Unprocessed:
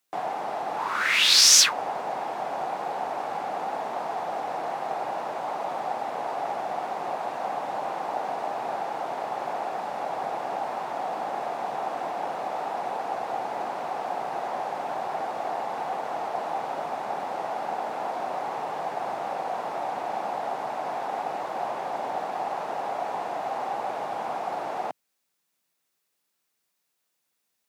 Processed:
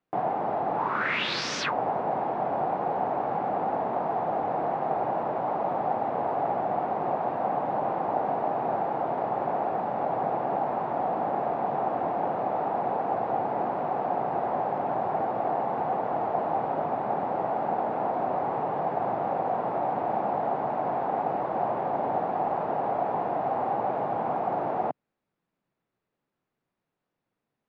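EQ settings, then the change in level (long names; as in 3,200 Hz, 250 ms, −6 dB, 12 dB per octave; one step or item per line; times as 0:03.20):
head-to-tape spacing loss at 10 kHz 37 dB
spectral tilt −2 dB per octave
low-shelf EQ 100 Hz +5 dB
+4.5 dB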